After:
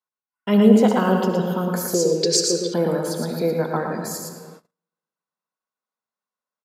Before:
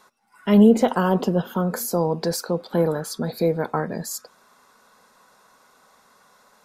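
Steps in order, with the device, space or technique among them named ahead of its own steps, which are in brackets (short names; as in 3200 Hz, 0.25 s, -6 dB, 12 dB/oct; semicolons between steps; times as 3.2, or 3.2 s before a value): PA in a hall (HPF 140 Hz 12 dB/oct; bell 2700 Hz +3 dB 0.33 oct; echo 0.114 s -4.5 dB; reverb RT60 2.0 s, pre-delay 58 ms, DRR 6.5 dB); gate -42 dBFS, range -38 dB; 1.94–2.74 EQ curve 110 Hz 0 dB, 250 Hz -9 dB, 410 Hz +12 dB, 840 Hz -22 dB, 2400 Hz +5 dB, 7100 Hz +15 dB, 12000 Hz -9 dB; gain -1 dB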